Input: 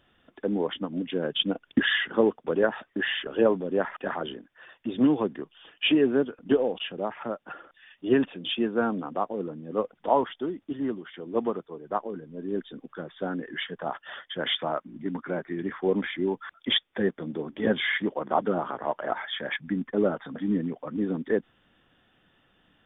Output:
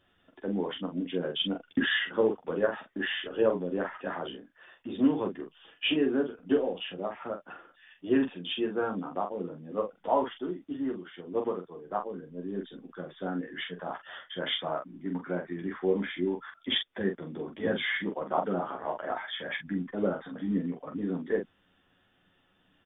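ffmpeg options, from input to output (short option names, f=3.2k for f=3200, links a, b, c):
-af "aecho=1:1:11|45:0.668|0.531,volume=-6dB"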